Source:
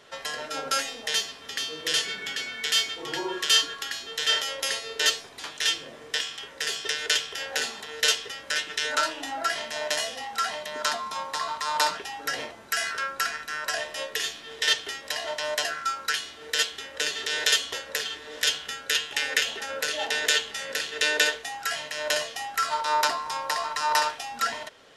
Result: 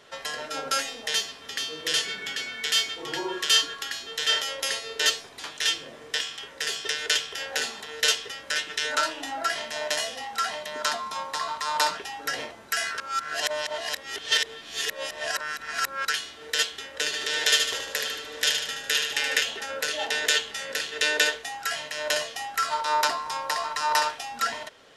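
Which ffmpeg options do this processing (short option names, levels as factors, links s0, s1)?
-filter_complex "[0:a]asettb=1/sr,asplit=3[s0][s1][s2];[s0]atrim=end=17.054[s3];[s1]atrim=start=17.05:end=19.39,asetpts=PTS-STARTPTS,afade=t=in:d=0.004:c=qsin,afade=t=out:st=2.336:d=0.004:c=qsin,aecho=1:1:75|150|225|300|375|450:0.562|0.287|0.146|0.0746|0.038|0.0194,atrim=end_sample=103194[s4];[s2]atrim=start=19.386[s5];[s3][s4]acrossfade=d=0.004:c1=hsin:c2=qsin[s6];[s6][s5]acrossfade=d=0.004:c1=qsin:c2=hsin,asplit=3[s7][s8][s9];[s7]atrim=end=13.002[s10];[s8]atrim=start=12.998:end=16.052,asetpts=PTS-STARTPTS,areverse[s11];[s9]atrim=start=16.048[s12];[s10][s11]acrossfade=d=0.004:c1=hsin:c2=hsin[s13];[s13][s12]acrossfade=d=0.004:c1=hsin:c2=hsin"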